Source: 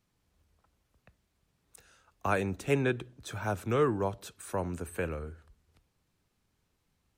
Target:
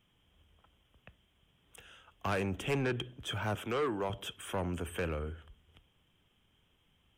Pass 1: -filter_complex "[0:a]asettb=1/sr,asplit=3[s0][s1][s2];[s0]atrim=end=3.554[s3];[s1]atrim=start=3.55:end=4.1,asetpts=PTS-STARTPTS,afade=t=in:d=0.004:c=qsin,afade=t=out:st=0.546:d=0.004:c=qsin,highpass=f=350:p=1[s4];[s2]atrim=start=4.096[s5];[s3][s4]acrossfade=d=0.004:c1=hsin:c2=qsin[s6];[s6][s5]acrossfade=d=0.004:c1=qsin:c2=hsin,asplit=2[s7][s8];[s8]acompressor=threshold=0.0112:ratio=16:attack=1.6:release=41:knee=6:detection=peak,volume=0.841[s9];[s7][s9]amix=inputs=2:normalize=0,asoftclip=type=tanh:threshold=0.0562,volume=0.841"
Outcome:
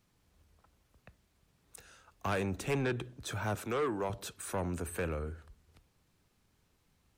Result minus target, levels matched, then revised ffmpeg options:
4 kHz band -5.0 dB
-filter_complex "[0:a]asettb=1/sr,asplit=3[s0][s1][s2];[s0]atrim=end=3.554[s3];[s1]atrim=start=3.55:end=4.1,asetpts=PTS-STARTPTS,afade=t=in:d=0.004:c=qsin,afade=t=out:st=0.546:d=0.004:c=qsin,highpass=f=350:p=1[s4];[s2]atrim=start=4.096[s5];[s3][s4]acrossfade=d=0.004:c1=hsin:c2=qsin[s6];[s6][s5]acrossfade=d=0.004:c1=qsin:c2=hsin,asplit=2[s7][s8];[s8]acompressor=threshold=0.0112:ratio=16:attack=1.6:release=41:knee=6:detection=peak,lowpass=f=3200:t=q:w=13,volume=0.841[s9];[s7][s9]amix=inputs=2:normalize=0,asoftclip=type=tanh:threshold=0.0562,volume=0.841"

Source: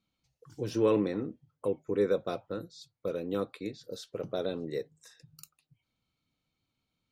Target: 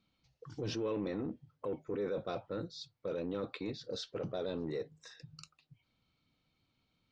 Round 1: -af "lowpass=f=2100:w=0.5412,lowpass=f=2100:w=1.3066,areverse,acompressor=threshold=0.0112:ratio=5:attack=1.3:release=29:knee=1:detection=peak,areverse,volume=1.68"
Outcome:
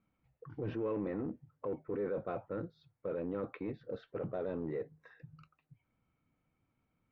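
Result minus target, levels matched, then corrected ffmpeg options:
4 kHz band -19.0 dB
-af "lowpass=f=5500:w=0.5412,lowpass=f=5500:w=1.3066,areverse,acompressor=threshold=0.0112:ratio=5:attack=1.3:release=29:knee=1:detection=peak,areverse,volume=1.68"

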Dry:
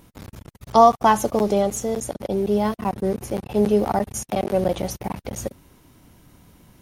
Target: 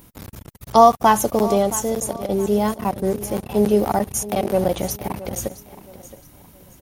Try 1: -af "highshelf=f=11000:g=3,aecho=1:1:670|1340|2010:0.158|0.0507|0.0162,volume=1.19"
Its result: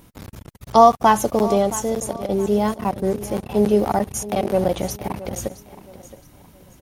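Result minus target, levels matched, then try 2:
8 kHz band -3.0 dB
-af "highshelf=f=11000:g=13.5,aecho=1:1:670|1340|2010:0.158|0.0507|0.0162,volume=1.19"

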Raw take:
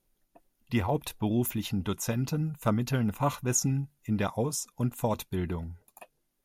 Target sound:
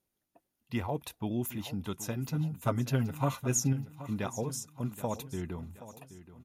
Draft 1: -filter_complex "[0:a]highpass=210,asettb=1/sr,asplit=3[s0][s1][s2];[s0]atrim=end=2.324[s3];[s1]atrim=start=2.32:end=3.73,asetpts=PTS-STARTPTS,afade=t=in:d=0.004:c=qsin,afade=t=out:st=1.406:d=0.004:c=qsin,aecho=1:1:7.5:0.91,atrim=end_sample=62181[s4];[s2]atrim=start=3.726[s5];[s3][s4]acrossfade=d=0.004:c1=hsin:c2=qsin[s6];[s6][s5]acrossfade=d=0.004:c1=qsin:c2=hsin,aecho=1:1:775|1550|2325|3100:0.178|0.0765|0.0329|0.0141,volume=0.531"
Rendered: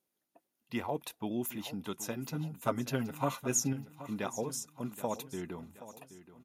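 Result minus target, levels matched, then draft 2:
125 Hz band -6.0 dB
-filter_complex "[0:a]highpass=68,asettb=1/sr,asplit=3[s0][s1][s2];[s0]atrim=end=2.324[s3];[s1]atrim=start=2.32:end=3.73,asetpts=PTS-STARTPTS,afade=t=in:d=0.004:c=qsin,afade=t=out:st=1.406:d=0.004:c=qsin,aecho=1:1:7.5:0.91,atrim=end_sample=62181[s4];[s2]atrim=start=3.726[s5];[s3][s4]acrossfade=d=0.004:c1=hsin:c2=qsin[s6];[s6][s5]acrossfade=d=0.004:c1=qsin:c2=hsin,aecho=1:1:775|1550|2325|3100:0.178|0.0765|0.0329|0.0141,volume=0.531"

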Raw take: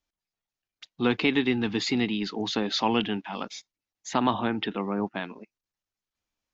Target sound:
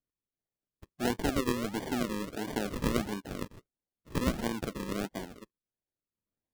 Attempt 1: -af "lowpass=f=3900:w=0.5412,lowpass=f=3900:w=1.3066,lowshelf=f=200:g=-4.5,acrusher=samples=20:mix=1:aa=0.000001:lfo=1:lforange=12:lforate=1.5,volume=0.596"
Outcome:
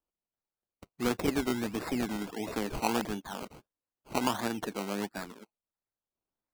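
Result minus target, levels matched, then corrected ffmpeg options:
decimation with a swept rate: distortion -8 dB
-af "lowpass=f=3900:w=0.5412,lowpass=f=3900:w=1.3066,lowshelf=f=200:g=-4.5,acrusher=samples=47:mix=1:aa=0.000001:lfo=1:lforange=28.2:lforate=1.5,volume=0.596"

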